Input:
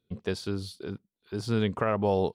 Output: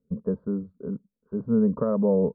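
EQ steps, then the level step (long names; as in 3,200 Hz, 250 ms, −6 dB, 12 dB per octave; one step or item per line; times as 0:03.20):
low-pass filter 1,200 Hz 24 dB per octave
tilt shelving filter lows +10 dB, about 890 Hz
phaser with its sweep stopped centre 510 Hz, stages 8
0.0 dB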